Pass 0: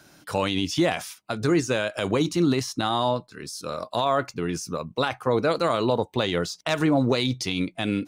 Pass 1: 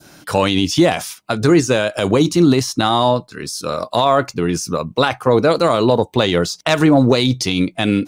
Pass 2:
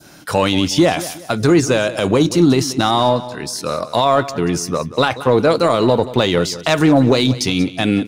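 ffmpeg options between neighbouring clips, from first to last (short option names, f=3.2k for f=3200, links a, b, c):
-af "acontrast=30,adynamicequalizer=threshold=0.0224:dfrequency=1900:dqfactor=0.78:tfrequency=1900:tqfactor=0.78:attack=5:release=100:ratio=0.375:range=2.5:mode=cutabove:tftype=bell,volume=4.5dB"
-filter_complex "[0:a]asplit=2[a][b];[b]asoftclip=type=hard:threshold=-17dB,volume=-12dB[c];[a][c]amix=inputs=2:normalize=0,aecho=1:1:183|366|549:0.168|0.0588|0.0206,volume=-1dB"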